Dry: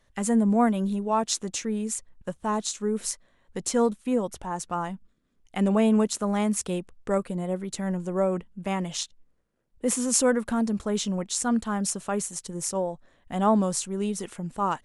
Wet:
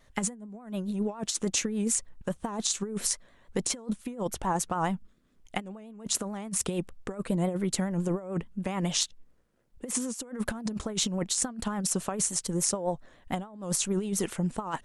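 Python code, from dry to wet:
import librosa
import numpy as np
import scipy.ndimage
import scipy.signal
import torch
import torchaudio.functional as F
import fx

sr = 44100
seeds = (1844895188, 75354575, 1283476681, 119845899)

y = fx.vibrato(x, sr, rate_hz=7.0, depth_cents=82.0)
y = fx.over_compress(y, sr, threshold_db=-30.0, ratio=-0.5)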